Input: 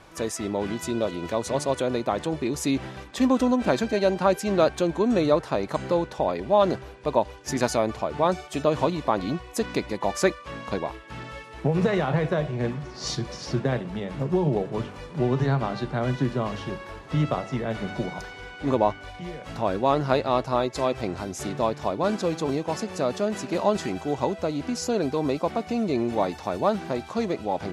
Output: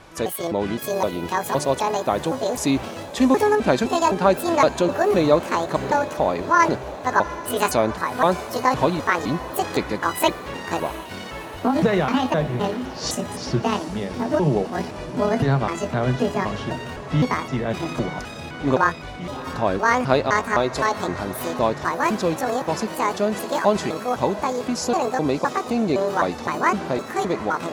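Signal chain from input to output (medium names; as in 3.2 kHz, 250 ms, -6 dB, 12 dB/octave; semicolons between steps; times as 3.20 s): pitch shift switched off and on +9 st, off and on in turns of 257 ms; echo that smears into a reverb 709 ms, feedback 59%, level -14.5 dB; trim +4 dB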